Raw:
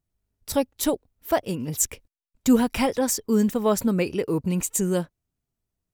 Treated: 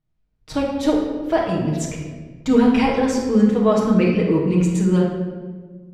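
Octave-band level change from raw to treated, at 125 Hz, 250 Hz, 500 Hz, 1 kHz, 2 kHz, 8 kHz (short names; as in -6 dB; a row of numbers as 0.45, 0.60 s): +9.0, +6.5, +5.5, +5.0, +5.0, -8.5 dB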